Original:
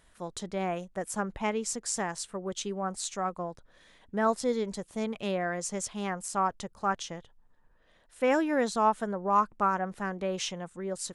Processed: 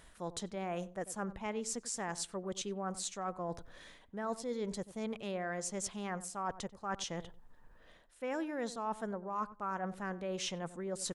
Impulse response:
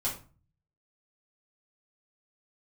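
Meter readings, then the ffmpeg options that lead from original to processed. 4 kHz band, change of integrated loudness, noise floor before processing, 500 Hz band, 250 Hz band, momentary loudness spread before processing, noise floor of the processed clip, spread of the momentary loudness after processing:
-4.5 dB, -8.5 dB, -63 dBFS, -8.0 dB, -7.5 dB, 9 LU, -61 dBFS, 4 LU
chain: -filter_complex "[0:a]areverse,acompressor=threshold=-42dB:ratio=5,areverse,asplit=2[a][b];[b]adelay=93,lowpass=f=960:p=1,volume=-14dB,asplit=2[c][d];[d]adelay=93,lowpass=f=960:p=1,volume=0.21[e];[a][c][e]amix=inputs=3:normalize=0,volume=5dB"

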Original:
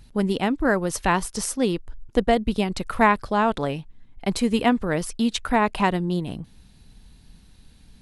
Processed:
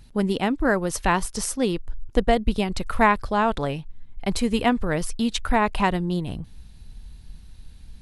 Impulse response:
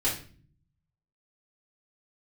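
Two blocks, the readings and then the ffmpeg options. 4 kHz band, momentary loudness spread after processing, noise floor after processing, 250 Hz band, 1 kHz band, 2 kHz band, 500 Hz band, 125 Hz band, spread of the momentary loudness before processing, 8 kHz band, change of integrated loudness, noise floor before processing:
0.0 dB, 9 LU, -46 dBFS, -1.0 dB, -0.5 dB, 0.0 dB, -0.5 dB, +0.5 dB, 8 LU, 0.0 dB, -0.5 dB, -52 dBFS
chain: -af "asubboost=boost=2.5:cutoff=120"

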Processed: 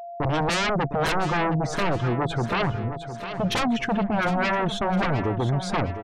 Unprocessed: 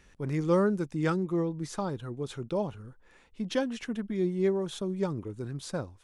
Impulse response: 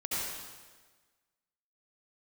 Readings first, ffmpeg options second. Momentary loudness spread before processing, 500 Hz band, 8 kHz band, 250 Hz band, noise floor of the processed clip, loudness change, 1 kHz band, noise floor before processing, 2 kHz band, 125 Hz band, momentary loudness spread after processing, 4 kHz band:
11 LU, +3.5 dB, +8.0 dB, +4.0 dB, -36 dBFS, +6.5 dB, +14.5 dB, -60 dBFS, +15.5 dB, +8.0 dB, 4 LU, +13.5 dB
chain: -af "afftdn=nr=29:nf=-48,agate=range=-43dB:threshold=-50dB:ratio=16:detection=peak,lowpass=f=3.2k:p=1,bandreject=f=50:t=h:w=6,bandreject=f=100:t=h:w=6,aeval=exprs='0.188*sin(PI/2*8.91*val(0)/0.188)':c=same,aeval=exprs='val(0)+0.0355*sin(2*PI*690*n/s)':c=same,aecho=1:1:708|1416|2124|2832:0.282|0.121|0.0521|0.0224,adynamicequalizer=threshold=0.0178:dfrequency=2500:dqfactor=0.7:tfrequency=2500:tqfactor=0.7:attack=5:release=100:ratio=0.375:range=2:mode=cutabove:tftype=highshelf,volume=-5.5dB"

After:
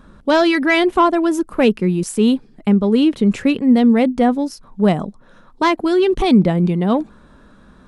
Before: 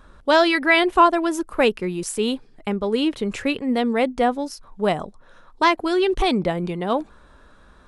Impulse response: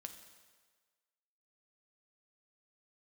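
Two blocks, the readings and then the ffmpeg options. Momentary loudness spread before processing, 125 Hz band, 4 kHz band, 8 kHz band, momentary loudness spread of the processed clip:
10 LU, +11.5 dB, 0.0 dB, n/a, 6 LU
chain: -af "acontrast=48,equalizer=f=200:w=1:g=12,volume=-5dB"

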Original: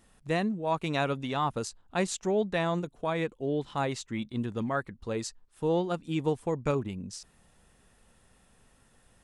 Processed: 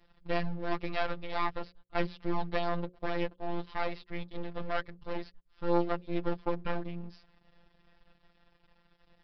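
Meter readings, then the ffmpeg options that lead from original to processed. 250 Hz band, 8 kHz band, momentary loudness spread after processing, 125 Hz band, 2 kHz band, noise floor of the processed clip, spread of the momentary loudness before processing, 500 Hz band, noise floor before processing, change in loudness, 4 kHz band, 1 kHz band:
-5.0 dB, under -30 dB, 9 LU, -6.5 dB, -2.5 dB, -69 dBFS, 7 LU, -5.0 dB, -64 dBFS, -4.5 dB, -5.0 dB, -2.5 dB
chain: -filter_complex "[0:a]acrossover=split=3200[a][b];[b]acompressor=threshold=-53dB:ratio=4:attack=1:release=60[c];[a][c]amix=inputs=2:normalize=0,aresample=11025,aeval=exprs='max(val(0),0)':c=same,aresample=44100,afftfilt=real='hypot(re,im)*cos(PI*b)':imag='0':win_size=1024:overlap=0.75,bandreject=f=60:t=h:w=6,bandreject=f=120:t=h:w=6,bandreject=f=180:t=h:w=6,bandreject=f=240:t=h:w=6,bandreject=f=300:t=h:w=6,bandreject=f=360:t=h:w=6,bandreject=f=420:t=h:w=6,bandreject=f=480:t=h:w=6,bandreject=f=540:t=h:w=6,volume=5dB"

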